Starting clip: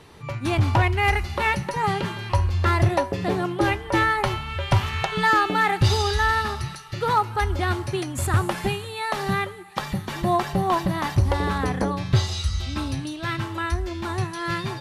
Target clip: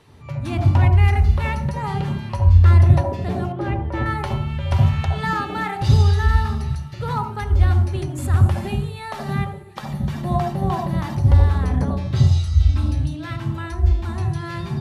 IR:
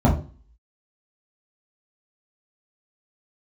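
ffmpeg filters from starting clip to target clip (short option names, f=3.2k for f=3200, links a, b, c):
-filter_complex "[0:a]asettb=1/sr,asplit=3[a][b][c];[a]atrim=end=3.524[d];[b]atrim=start=3.52:end=4.06,asetpts=PTS-STARTPTS,afade=t=in:d=0.004:c=qsin,afade=t=out:st=0.536:d=0.004:c=qsin,lowpass=f=1.7k:p=1[e];[c]atrim=start=4.056[f];[d][e]acrossfade=d=0.004:c1=hsin:c2=qsin[g];[g][f]acrossfade=d=0.004:c1=qsin:c2=hsin,asplit=2[h][i];[1:a]atrim=start_sample=2205,adelay=64[j];[i][j]afir=irnorm=-1:irlink=0,volume=-23.5dB[k];[h][k]amix=inputs=2:normalize=0,volume=-6dB"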